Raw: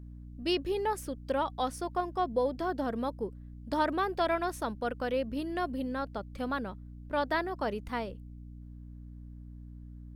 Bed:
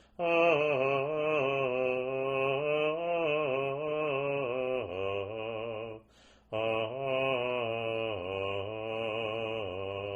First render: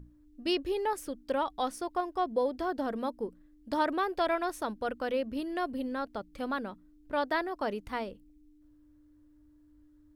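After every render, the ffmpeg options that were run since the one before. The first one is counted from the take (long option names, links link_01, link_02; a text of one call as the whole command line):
ffmpeg -i in.wav -af "bandreject=frequency=60:width_type=h:width=6,bandreject=frequency=120:width_type=h:width=6,bandreject=frequency=180:width_type=h:width=6,bandreject=frequency=240:width_type=h:width=6" out.wav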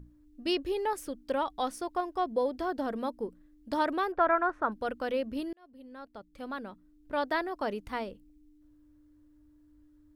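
ffmpeg -i in.wav -filter_complex "[0:a]asettb=1/sr,asplit=3[link_01][link_02][link_03];[link_01]atrim=end=4.124[link_04];[link_02]atrim=start=4.12:end=4.72,asetpts=PTS-STARTPTS,afade=type=in:duration=0.004:curve=qsin,afade=type=out:start_time=0.596:duration=0.004:curve=qsin,lowpass=frequency=1400:width_type=q:width=2.9[link_05];[link_03]atrim=start=4.716[link_06];[link_04][link_05]acrossfade=duration=0.004:curve1=hsin:curve2=qsin[link_07];[link_07][link_06]acrossfade=duration=0.004:curve1=qsin:curve2=hsin,asplit=2[link_08][link_09];[link_08]atrim=end=5.53,asetpts=PTS-STARTPTS,afade=type=out:start_time=5.526:duration=0.004:curve=hsin[link_10];[link_09]atrim=start=5.53,asetpts=PTS-STARTPTS,afade=type=in:duration=1.73[link_11];[link_10][link_11]concat=n=2:v=0:a=1" out.wav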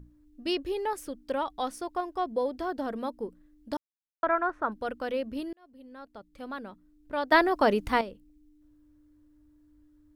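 ffmpeg -i in.wav -filter_complex "[0:a]asplit=5[link_01][link_02][link_03][link_04][link_05];[link_01]atrim=end=3.77,asetpts=PTS-STARTPTS,afade=type=out:start_time=3.766:duration=0.004:curve=hsin[link_06];[link_02]atrim=start=3.77:end=4.23,asetpts=PTS-STARTPTS,volume=0[link_07];[link_03]atrim=start=4.23:end=7.322,asetpts=PTS-STARTPTS,afade=type=in:duration=0.004:curve=hsin[link_08];[link_04]atrim=start=7.318:end=8.012,asetpts=PTS-STARTPTS,volume=10dB[link_09];[link_05]atrim=start=8.008[link_10];[link_06][link_07][link_08]concat=n=3:v=0:a=1[link_11];[link_11][link_09]acrossfade=duration=0.004:curve1=hsin:curve2=hsin[link_12];[link_12][link_10]acrossfade=duration=0.004:curve1=hsin:curve2=hsin" out.wav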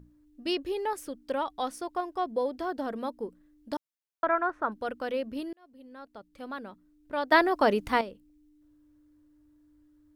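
ffmpeg -i in.wav -af "lowshelf=frequency=85:gain=-8" out.wav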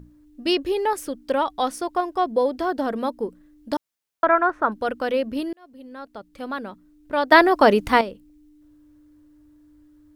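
ffmpeg -i in.wav -af "volume=8.5dB,alimiter=limit=-1dB:level=0:latency=1" out.wav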